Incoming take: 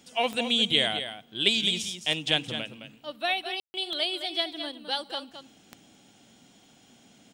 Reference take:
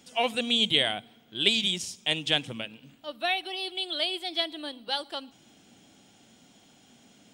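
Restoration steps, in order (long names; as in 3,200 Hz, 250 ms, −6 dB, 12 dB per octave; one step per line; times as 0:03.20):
click removal
ambience match 0:03.60–0:03.74
echo removal 214 ms −9.5 dB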